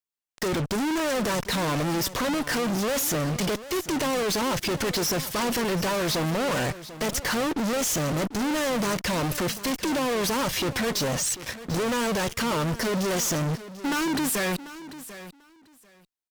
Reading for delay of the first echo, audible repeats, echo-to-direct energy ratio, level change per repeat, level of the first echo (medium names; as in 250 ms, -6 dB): 742 ms, 2, -15.0 dB, -15.5 dB, -15.0 dB